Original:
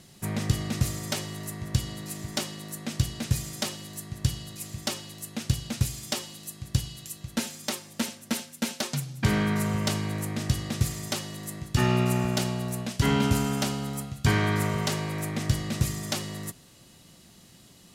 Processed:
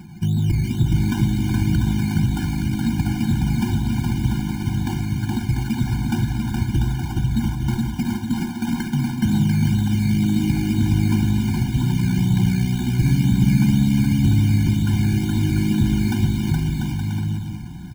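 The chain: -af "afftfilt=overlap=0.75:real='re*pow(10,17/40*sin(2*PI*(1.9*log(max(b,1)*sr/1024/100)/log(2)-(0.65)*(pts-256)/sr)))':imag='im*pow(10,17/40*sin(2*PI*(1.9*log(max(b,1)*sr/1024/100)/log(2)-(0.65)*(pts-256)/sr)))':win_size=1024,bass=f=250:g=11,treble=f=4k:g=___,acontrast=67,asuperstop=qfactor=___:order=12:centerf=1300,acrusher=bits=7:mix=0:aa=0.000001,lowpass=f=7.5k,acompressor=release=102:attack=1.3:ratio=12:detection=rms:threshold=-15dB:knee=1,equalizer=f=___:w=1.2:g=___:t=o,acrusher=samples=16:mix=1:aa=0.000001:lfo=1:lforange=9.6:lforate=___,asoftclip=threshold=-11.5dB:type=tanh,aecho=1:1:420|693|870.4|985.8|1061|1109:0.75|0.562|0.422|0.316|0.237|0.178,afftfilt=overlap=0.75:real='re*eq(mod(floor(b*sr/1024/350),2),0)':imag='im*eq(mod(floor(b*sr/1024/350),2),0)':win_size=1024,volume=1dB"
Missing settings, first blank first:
-3, 0.73, 2.1k, -7, 2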